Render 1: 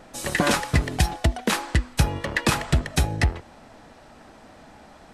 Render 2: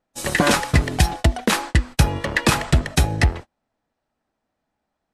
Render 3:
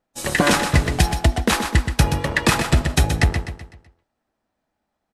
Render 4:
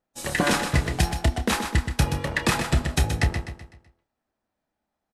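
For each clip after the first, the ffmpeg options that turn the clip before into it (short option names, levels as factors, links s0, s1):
-af "agate=range=0.02:threshold=0.02:ratio=16:detection=peak,volume=1.58"
-af "aecho=1:1:126|252|378|504|630:0.398|0.171|0.0736|0.0317|0.0136"
-filter_complex "[0:a]asplit=2[s0][s1];[s1]adelay=29,volume=0.282[s2];[s0][s2]amix=inputs=2:normalize=0,volume=0.531"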